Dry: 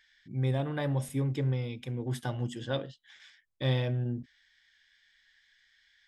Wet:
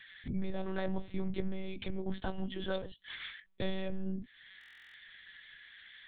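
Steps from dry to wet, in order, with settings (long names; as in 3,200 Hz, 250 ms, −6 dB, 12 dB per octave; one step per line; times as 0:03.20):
downward compressor 3 to 1, threshold −49 dBFS, peak gain reduction 18.5 dB
one-pitch LPC vocoder at 8 kHz 190 Hz
buffer that repeats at 0:04.59, samples 1,024, times 14
level +12 dB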